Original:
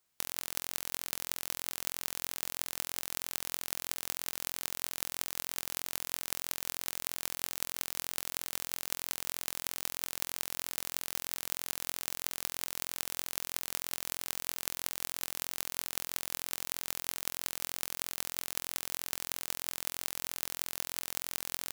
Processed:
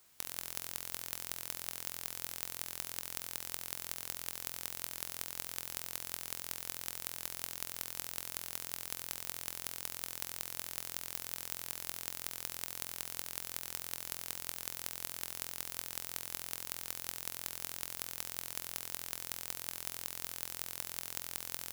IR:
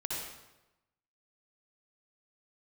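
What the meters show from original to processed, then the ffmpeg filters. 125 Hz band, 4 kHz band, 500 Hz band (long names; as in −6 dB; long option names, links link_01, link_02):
−1.5 dB, −5.0 dB, −4.5 dB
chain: -filter_complex "[0:a]aeval=exprs='(mod(5.62*val(0)+1,2)-1)/5.62':channel_layout=same,asplit=2[link_01][link_02];[link_02]equalizer=frequency=77:width_type=o:width=2.5:gain=13.5[link_03];[1:a]atrim=start_sample=2205,highshelf=frequency=5500:gain=11.5[link_04];[link_03][link_04]afir=irnorm=-1:irlink=0,volume=-19.5dB[link_05];[link_01][link_05]amix=inputs=2:normalize=0,volume=11dB"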